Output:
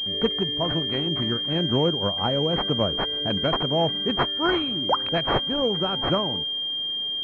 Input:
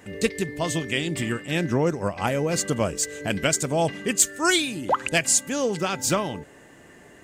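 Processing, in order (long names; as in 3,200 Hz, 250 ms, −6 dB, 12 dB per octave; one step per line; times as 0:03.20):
switching amplifier with a slow clock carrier 3,200 Hz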